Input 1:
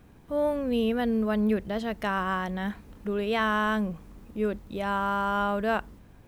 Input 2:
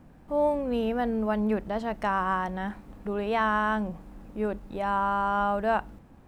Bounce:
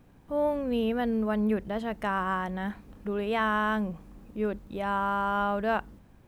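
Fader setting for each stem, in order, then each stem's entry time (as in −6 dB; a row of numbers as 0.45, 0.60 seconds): −5.0, −9.5 decibels; 0.00, 0.00 seconds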